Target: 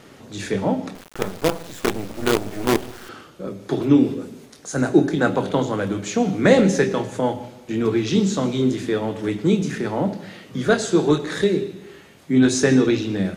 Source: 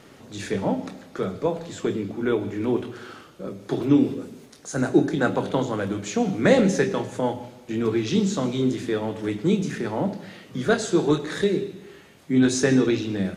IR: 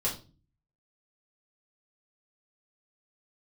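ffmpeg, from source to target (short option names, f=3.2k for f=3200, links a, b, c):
-filter_complex "[0:a]asettb=1/sr,asplit=3[a][b][c];[a]atrim=end=0.954[d];[b]atrim=start=0.95:end=3.09,asetpts=PTS-STARTPTS,afade=t=in:d=0.004:c=qsin,afade=t=out:st=2.136:d=0.004:c=qsin,acrusher=bits=4:dc=4:mix=0:aa=0.000001[e];[c]atrim=start=3.086[f];[d][e]acrossfade=d=0.004:c1=hsin:c2=qsin[g];[g][f]acrossfade=d=0.004:c1=qsin:c2=hsin,volume=3dB"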